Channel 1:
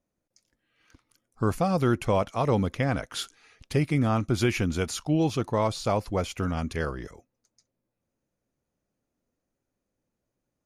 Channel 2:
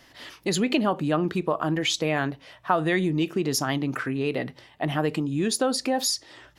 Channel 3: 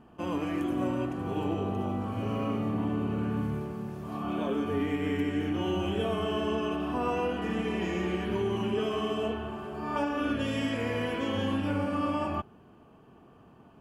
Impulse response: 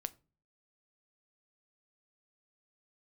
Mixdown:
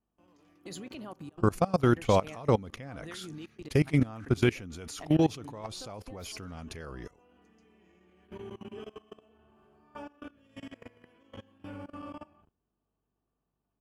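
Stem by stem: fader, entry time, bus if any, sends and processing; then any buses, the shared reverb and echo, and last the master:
+1.0 dB, 0.00 s, no bus, send −21 dB, no processing
−12.0 dB, 0.20 s, bus A, send −22.5 dB, high-shelf EQ 6,200 Hz +8 dB
−15.0 dB, 0.00 s, bus A, send −5.5 dB, mains hum 50 Hz, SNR 26 dB; automatic ducking −14 dB, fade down 1.60 s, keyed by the first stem
bus A: 0.0 dB, gate pattern "xx.x..xxxxxx" 163 BPM −24 dB; brickwall limiter −30.5 dBFS, peak gain reduction 11.5 dB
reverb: on, RT60 0.35 s, pre-delay 7 ms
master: output level in coarse steps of 21 dB

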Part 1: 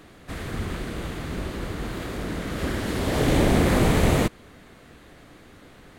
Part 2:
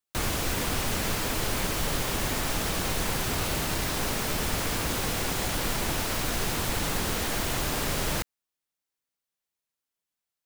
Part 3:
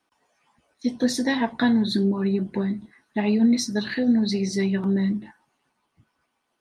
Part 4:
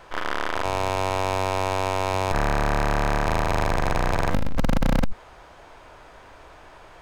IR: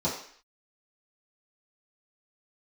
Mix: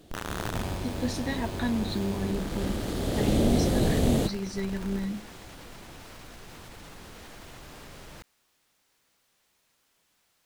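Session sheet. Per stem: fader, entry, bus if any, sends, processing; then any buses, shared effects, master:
−4.5 dB, 0.00 s, no send, flat-topped bell 1,500 Hz −11 dB
−19.0 dB, 0.00 s, no send, high-shelf EQ 8,400 Hz −9 dB; envelope flattener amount 70%
−9.0 dB, 0.00 s, no send, no processing
−4.0 dB, 0.00 s, no send, hum removal 60.68 Hz, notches 13; comparator with hysteresis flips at −28 dBFS; automatic ducking −10 dB, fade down 0.30 s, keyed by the third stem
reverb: not used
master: no processing

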